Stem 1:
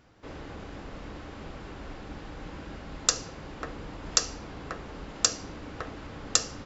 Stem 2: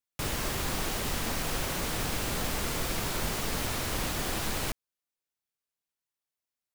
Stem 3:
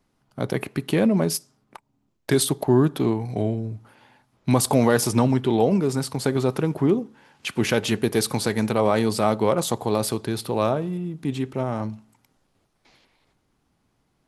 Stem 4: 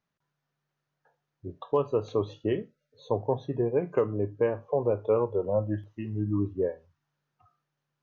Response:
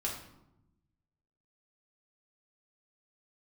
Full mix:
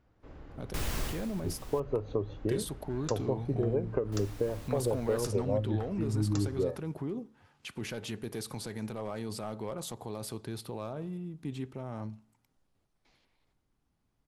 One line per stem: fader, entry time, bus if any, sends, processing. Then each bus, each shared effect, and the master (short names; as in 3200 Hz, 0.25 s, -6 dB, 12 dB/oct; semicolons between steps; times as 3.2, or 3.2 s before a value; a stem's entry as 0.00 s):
-10.5 dB, 0.00 s, bus B, no send, dry
+2.0 dB, 0.55 s, muted 1.8–4.12, bus A, no send, auto duck -22 dB, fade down 0.45 s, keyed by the fourth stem
-12.0 dB, 0.20 s, bus A, no send, dry
+0.5 dB, 0.00 s, bus B, no send, rotary speaker horn 5 Hz
bus A: 0.0 dB, overloaded stage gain 23 dB; limiter -29.5 dBFS, peak gain reduction 6.5 dB
bus B: 0.0 dB, high shelf 2400 Hz -10 dB; compressor, threshold -27 dBFS, peak gain reduction 8 dB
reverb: off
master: low shelf 80 Hz +10.5 dB